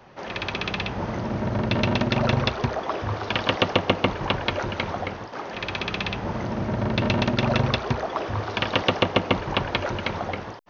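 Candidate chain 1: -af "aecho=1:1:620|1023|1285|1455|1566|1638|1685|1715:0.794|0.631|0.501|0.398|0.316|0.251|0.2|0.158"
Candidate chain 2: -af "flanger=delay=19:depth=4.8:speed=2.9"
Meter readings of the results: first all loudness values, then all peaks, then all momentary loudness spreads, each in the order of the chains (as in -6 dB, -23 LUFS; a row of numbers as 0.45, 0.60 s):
-21.5, -28.5 LUFS; -4.0, -8.0 dBFS; 6, 7 LU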